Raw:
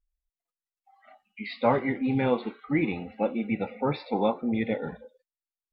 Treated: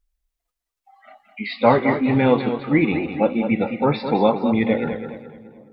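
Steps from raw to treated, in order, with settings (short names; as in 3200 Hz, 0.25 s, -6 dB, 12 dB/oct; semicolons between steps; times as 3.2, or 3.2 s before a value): dark delay 0.44 s, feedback 53%, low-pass 530 Hz, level -20 dB; warbling echo 0.21 s, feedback 36%, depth 78 cents, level -9 dB; gain +8 dB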